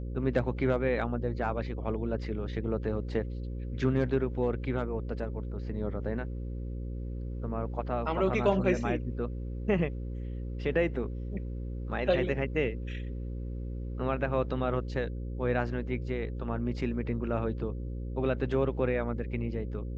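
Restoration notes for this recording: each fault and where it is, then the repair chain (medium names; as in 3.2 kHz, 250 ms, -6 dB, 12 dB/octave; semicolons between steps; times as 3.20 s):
buzz 60 Hz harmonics 9 -36 dBFS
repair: de-hum 60 Hz, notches 9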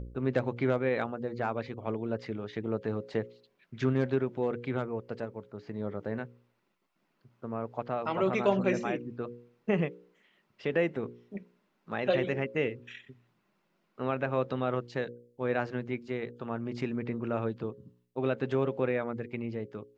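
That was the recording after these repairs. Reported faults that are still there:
nothing left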